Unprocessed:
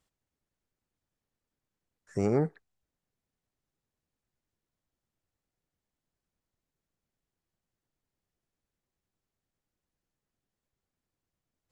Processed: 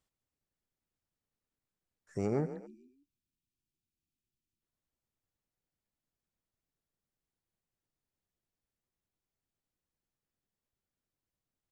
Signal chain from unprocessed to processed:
echo with shifted repeats 142 ms, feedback 44%, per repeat +31 Hz, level −13 dB
time-frequency box erased 0:02.67–0:04.62, 400–2,300 Hz
level −5.5 dB

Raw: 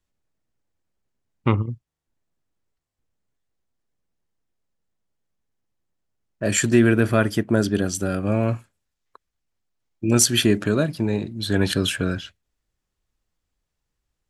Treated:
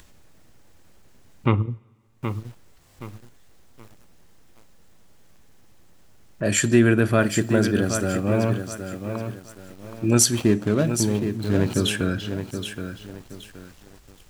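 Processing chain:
0:10.31–0:11.77: running median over 25 samples
in parallel at +3 dB: upward compression, threshold −22 dBFS
on the sum: coupled-rooms reverb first 0.51 s, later 1.8 s, from −17 dB, DRR 17 dB
feedback echo at a low word length 773 ms, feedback 35%, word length 6 bits, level −8 dB
level −8 dB

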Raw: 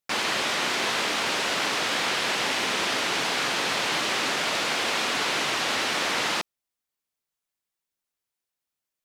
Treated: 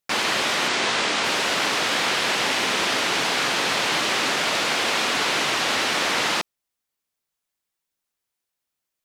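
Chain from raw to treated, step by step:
0:00.68–0:01.24: low-pass filter 9,200 Hz 24 dB per octave
level +3.5 dB

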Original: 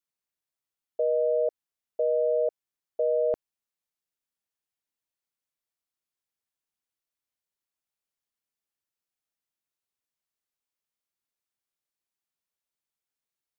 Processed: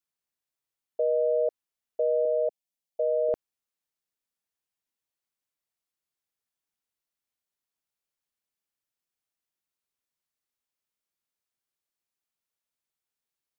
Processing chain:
0:02.25–0:03.29: phaser with its sweep stopped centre 350 Hz, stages 6

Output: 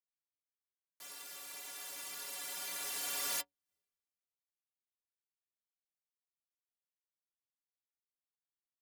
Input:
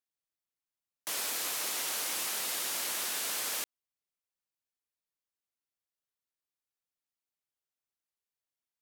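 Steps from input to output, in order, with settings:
source passing by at 0:03.74, 22 m/s, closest 1.7 metres
stiff-string resonator 85 Hz, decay 0.29 s, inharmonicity 0.03
leveller curve on the samples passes 2
level +17 dB

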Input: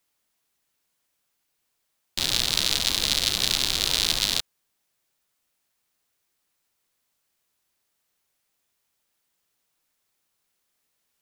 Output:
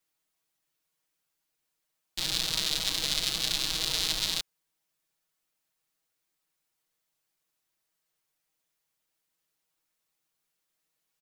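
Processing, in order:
comb filter 6.3 ms, depth 97%
level −8.5 dB

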